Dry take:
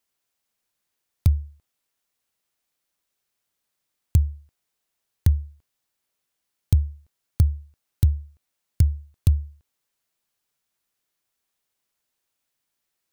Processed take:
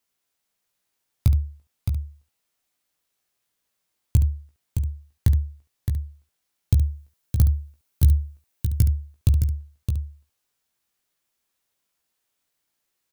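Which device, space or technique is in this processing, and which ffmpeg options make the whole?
slapback doubling: -filter_complex "[0:a]asettb=1/sr,asplit=3[s0][s1][s2];[s0]atrim=end=6.764[s3];[s1]atrim=start=6.76:end=8.9,asetpts=PTS-STARTPTS,afade=t=in:d=0.004:c=qsin,afade=t=out:st=2.136:d=0.004:c=qsin,highshelf=f=8500:g=6[s4];[s2]atrim=start=8.896[s5];[s3][s4]acrossfade=d=0.004:c1=hsin:c2=qsin[s6];[s6][s5]acrossfade=d=0.004:c1=qsin:c2=hsin,aecho=1:1:616:0.473,asplit=3[s7][s8][s9];[s8]adelay=17,volume=0.473[s10];[s9]adelay=70,volume=0.299[s11];[s7][s10][s11]amix=inputs=3:normalize=0"

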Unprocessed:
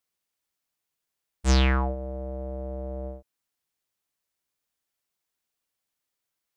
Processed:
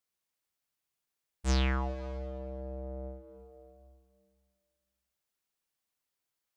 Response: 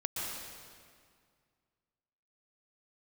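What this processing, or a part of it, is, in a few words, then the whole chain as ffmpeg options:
ducked reverb: -filter_complex "[0:a]asplit=3[s0][s1][s2];[1:a]atrim=start_sample=2205[s3];[s1][s3]afir=irnorm=-1:irlink=0[s4];[s2]apad=whole_len=289729[s5];[s4][s5]sidechaincompress=threshold=0.00794:ratio=6:attack=9.8:release=298,volume=0.668[s6];[s0][s6]amix=inputs=2:normalize=0,volume=0.398"

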